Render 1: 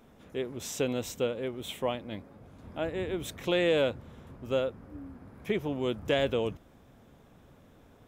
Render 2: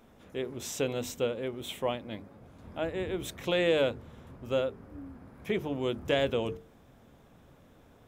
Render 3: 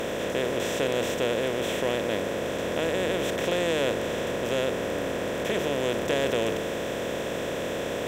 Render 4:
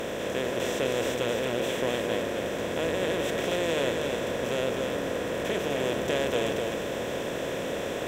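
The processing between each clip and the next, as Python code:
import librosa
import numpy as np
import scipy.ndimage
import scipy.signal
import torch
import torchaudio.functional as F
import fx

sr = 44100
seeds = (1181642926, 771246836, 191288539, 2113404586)

y1 = fx.hum_notches(x, sr, base_hz=50, count=9)
y2 = fx.bin_compress(y1, sr, power=0.2)
y2 = y2 * 10.0 ** (-4.0 / 20.0)
y3 = y2 + 10.0 ** (-5.0 / 20.0) * np.pad(y2, (int(254 * sr / 1000.0), 0))[:len(y2)]
y3 = y3 * 10.0 ** (-2.5 / 20.0)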